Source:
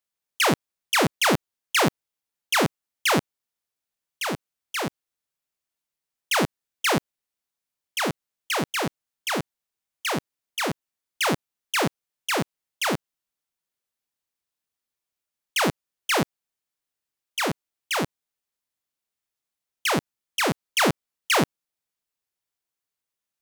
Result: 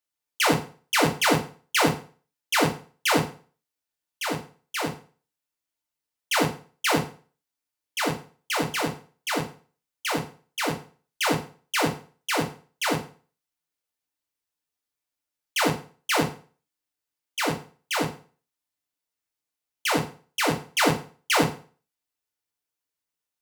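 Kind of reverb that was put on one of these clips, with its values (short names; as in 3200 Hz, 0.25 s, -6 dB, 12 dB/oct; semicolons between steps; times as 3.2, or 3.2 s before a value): FDN reverb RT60 0.4 s, low-frequency decay 0.95×, high-frequency decay 0.9×, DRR 1 dB; gain -3 dB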